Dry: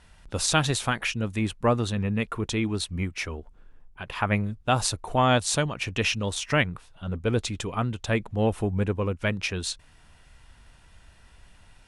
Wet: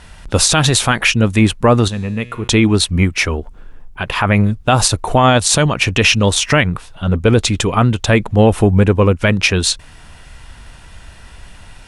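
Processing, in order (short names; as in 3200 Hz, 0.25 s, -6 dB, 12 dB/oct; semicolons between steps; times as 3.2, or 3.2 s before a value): 1.88–2.48 resonator 120 Hz, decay 1.6 s, mix 70%; maximiser +16.5 dB; gain -1 dB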